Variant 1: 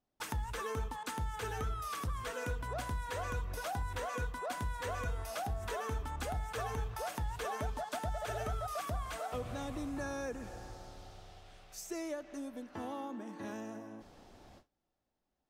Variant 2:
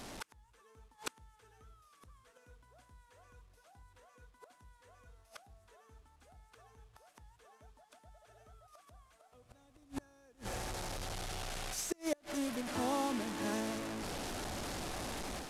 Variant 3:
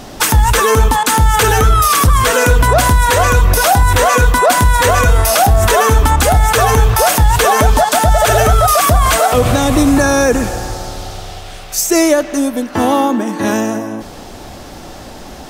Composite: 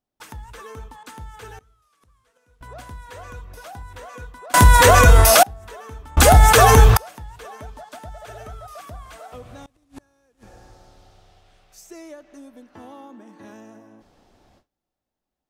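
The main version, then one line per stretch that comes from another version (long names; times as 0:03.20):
1
0:01.59–0:02.61: punch in from 2
0:04.54–0:05.43: punch in from 3
0:06.17–0:06.97: punch in from 3
0:09.66–0:10.43: punch in from 2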